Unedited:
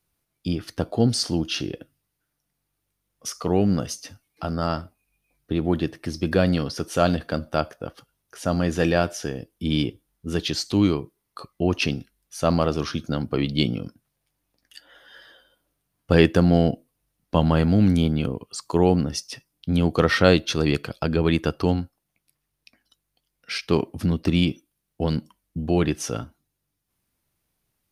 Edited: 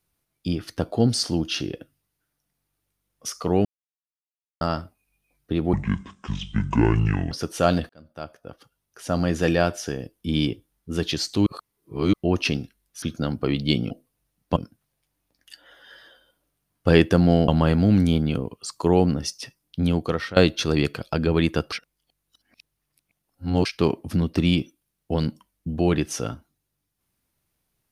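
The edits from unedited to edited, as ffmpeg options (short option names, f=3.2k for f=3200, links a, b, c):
-filter_complex "[0:a]asplit=15[a][b][c][d][e][f][g][h][i][j][k][l][m][n][o];[a]atrim=end=3.65,asetpts=PTS-STARTPTS,afade=t=out:st=3.646:d=0.004:c=hsin[p];[b]atrim=start=3.65:end=4.61,asetpts=PTS-STARTPTS,volume=0[q];[c]atrim=start=4.61:end=5.734,asetpts=PTS-STARTPTS,afade=t=in:d=0.004:c=hsin[r];[d]atrim=start=5.73:end=6.68,asetpts=PTS-STARTPTS,asetrate=26460,aresample=44100[s];[e]atrim=start=6.676:end=7.26,asetpts=PTS-STARTPTS,afade=t=out:st=0.58:d=0.004:c=hsin[t];[f]atrim=start=7.26:end=10.832,asetpts=PTS-STARTPTS,afade=t=in:d=1.34[u];[g]atrim=start=10.828:end=11.502,asetpts=PTS-STARTPTS,areverse[v];[h]atrim=start=11.498:end=12.392[w];[i]atrim=start=12.918:end=13.802[x];[j]atrim=start=16.718:end=17.382[y];[k]atrim=start=13.798:end=16.722[z];[l]atrim=start=17.378:end=20.26,asetpts=PTS-STARTPTS,afade=t=out:st=2.342:d=0.54:silence=0.112202[aa];[m]atrim=start=20.26:end=21.622,asetpts=PTS-STARTPTS,afade=t=in:d=0.004:c=hsin:silence=0.112202[ab];[n]atrim=start=21.618:end=23.552,asetpts=PTS-STARTPTS,areverse[ac];[o]atrim=start=23.548[ad];[p][q][r]concat=n=3:v=0:a=1[ae];[ae][s]acrossfade=d=0.004:c1=hsin:c2=hsin[af];[t][u]concat=n=2:v=0:a=1[ag];[af][ag]acrossfade=d=0.004:c1=hsin:c2=hsin[ah];[ah][v]acrossfade=d=0.004:c1=hsin:c2=hsin[ai];[ai][w]acrossfade=d=0.004:c1=hsin:c2=hsin[aj];[aj][x]acrossfade=d=0.004:c1=hsin:c2=hsin[ak];[ak][y]acrossfade=d=0.004:c1=hsin:c2=hsin[al];[al][z]acrossfade=d=0.004:c1=hsin:c2=hsin[am];[aa][ab]concat=n=2:v=0:a=1[an];[am][an]acrossfade=d=0.004:c1=hsin:c2=hsin[ao];[ao][ac]acrossfade=d=0.004:c1=hsin:c2=hsin[ap];[ap][ad]acrossfade=d=0.004:c1=hsin:c2=hsin"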